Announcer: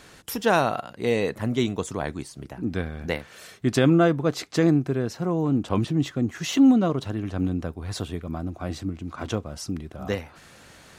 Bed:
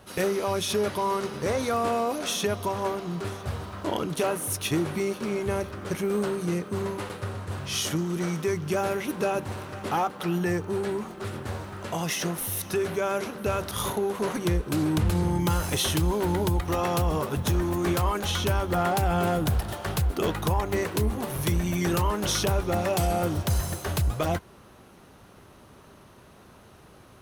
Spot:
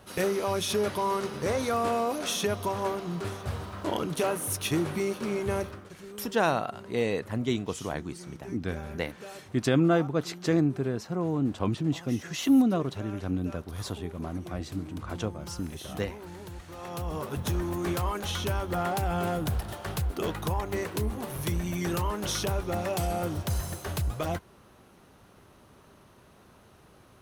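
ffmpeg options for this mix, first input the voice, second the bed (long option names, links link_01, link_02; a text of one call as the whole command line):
ffmpeg -i stem1.wav -i stem2.wav -filter_complex "[0:a]adelay=5900,volume=-4.5dB[link_01];[1:a]volume=12dB,afade=type=out:start_time=5.65:duration=0.24:silence=0.149624,afade=type=in:start_time=16.74:duration=0.63:silence=0.211349[link_02];[link_01][link_02]amix=inputs=2:normalize=0" out.wav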